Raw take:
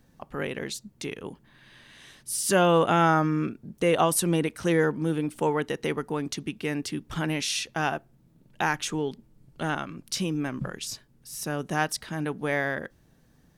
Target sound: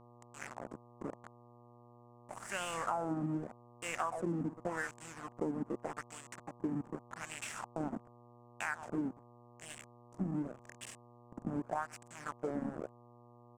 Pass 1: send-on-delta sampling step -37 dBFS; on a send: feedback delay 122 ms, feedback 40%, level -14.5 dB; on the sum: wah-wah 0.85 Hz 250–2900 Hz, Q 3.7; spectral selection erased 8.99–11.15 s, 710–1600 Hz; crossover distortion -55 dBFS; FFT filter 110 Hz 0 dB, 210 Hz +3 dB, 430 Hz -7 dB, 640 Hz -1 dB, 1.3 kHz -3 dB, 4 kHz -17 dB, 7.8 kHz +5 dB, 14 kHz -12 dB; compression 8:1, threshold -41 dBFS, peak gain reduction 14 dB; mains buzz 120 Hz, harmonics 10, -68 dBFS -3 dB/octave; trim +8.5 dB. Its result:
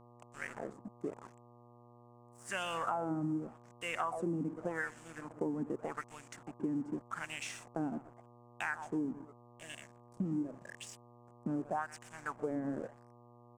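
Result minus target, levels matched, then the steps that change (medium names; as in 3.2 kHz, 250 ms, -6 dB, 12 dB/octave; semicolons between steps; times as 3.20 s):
send-on-delta sampling: distortion -12 dB; crossover distortion: distortion -8 dB
change: send-on-delta sampling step -25.5 dBFS; change: crossover distortion -46.5 dBFS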